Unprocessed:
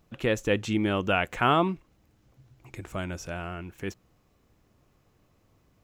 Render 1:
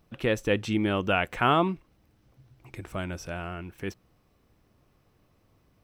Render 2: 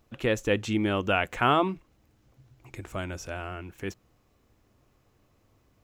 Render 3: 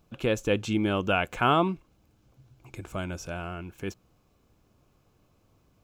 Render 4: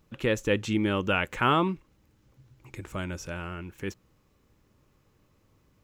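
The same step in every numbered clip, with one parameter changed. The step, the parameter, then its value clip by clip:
notch, frequency: 6900, 170, 1900, 700 Hz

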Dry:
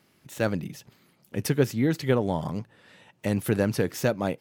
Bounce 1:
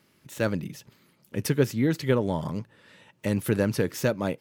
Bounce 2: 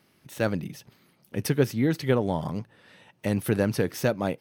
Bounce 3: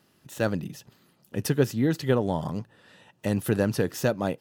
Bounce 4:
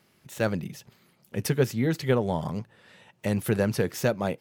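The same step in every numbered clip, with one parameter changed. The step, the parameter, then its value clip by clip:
notch, frequency: 740, 7200, 2200, 290 Hz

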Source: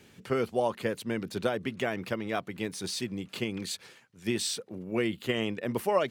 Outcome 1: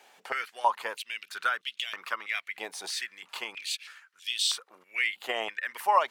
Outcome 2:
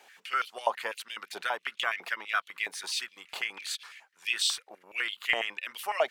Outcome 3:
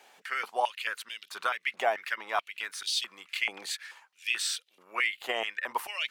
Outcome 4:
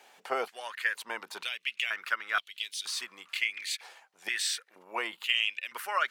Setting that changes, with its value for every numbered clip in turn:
stepped high-pass, rate: 3.1, 12, 4.6, 2.1 Hz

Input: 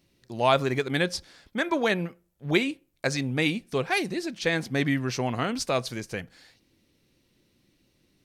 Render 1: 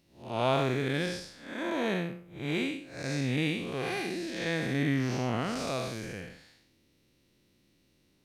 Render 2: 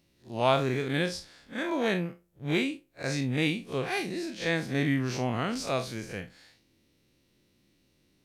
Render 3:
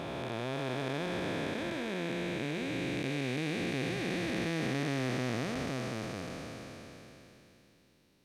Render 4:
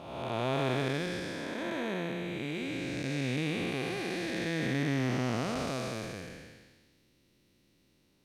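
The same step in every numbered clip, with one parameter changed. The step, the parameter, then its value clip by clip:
time blur, width: 220, 90, 1700, 591 ms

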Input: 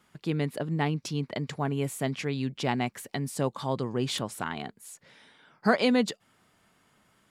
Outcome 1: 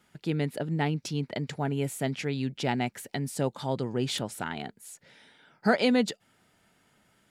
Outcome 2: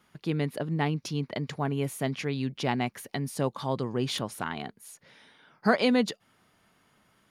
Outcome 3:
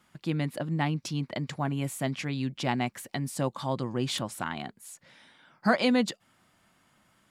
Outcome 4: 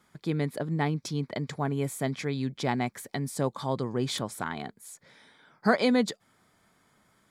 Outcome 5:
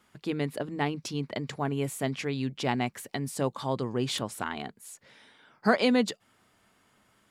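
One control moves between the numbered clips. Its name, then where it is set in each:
notch, frequency: 1100, 7700, 430, 2800, 160 Hz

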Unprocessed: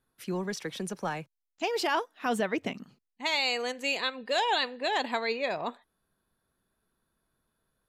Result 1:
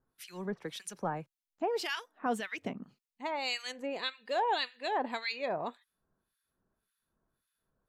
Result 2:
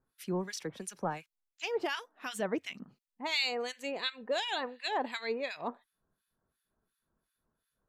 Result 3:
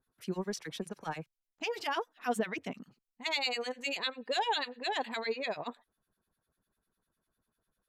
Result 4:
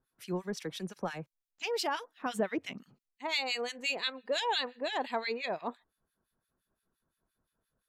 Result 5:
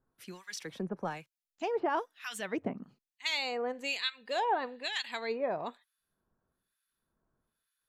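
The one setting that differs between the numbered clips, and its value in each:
harmonic tremolo, rate: 1.8, 2.8, 10, 5.8, 1.1 Hz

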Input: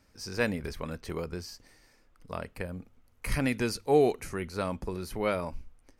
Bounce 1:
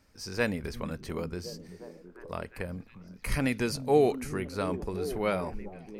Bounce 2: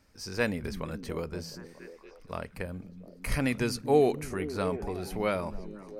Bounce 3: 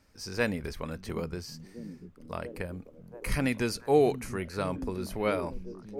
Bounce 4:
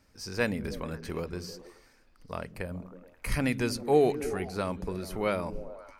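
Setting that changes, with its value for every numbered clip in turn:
delay with a stepping band-pass, time: 0.355, 0.235, 0.684, 0.106 s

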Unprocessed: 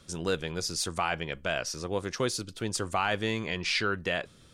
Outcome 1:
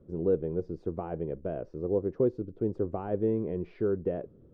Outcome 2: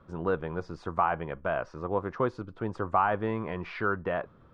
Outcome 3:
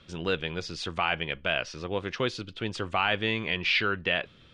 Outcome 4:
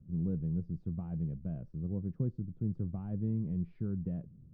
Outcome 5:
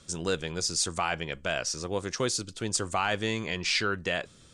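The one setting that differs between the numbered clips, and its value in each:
synth low-pass, frequency: 420, 1100, 3000, 170, 7900 Hz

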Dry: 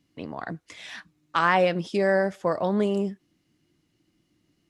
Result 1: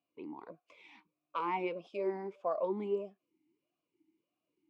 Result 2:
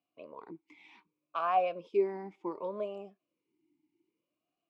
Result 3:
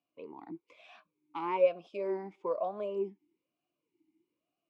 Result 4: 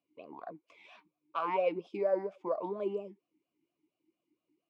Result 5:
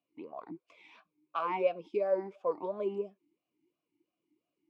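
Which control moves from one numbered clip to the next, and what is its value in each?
vowel sweep, rate: 1.6, 0.66, 1.1, 4.3, 2.9 Hz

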